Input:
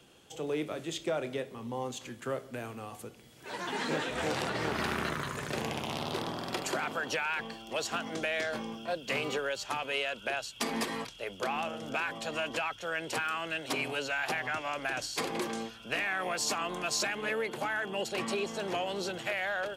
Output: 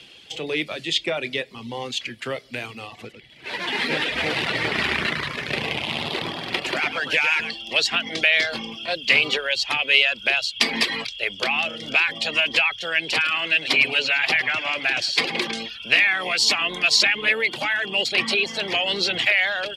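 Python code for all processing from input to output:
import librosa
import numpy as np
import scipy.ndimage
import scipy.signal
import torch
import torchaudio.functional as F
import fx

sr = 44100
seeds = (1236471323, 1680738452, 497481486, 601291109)

y = fx.chain(x, sr, fx.median_filter(points=9),
    fx.echo_single(ms=104, db=-6.0), at=(2.87, 7.5))
y = fx.chain(y, sr, fx.highpass(hz=89.0, slope=12),
    fx.high_shelf(hz=6400.0, db=-4.5),
    fx.echo_feedback(ms=107, feedback_pct=31, wet_db=-10), at=(12.98, 15.52))
y = fx.chain(y, sr, fx.high_shelf(hz=9500.0, db=-6.5),
    fx.env_flatten(amount_pct=50), at=(18.74, 19.25))
y = scipy.signal.sosfilt(scipy.signal.butter(4, 12000.0, 'lowpass', fs=sr, output='sos'), y)
y = fx.dereverb_blind(y, sr, rt60_s=0.58)
y = fx.band_shelf(y, sr, hz=3100.0, db=13.0, octaves=1.7)
y = y * 10.0 ** (5.5 / 20.0)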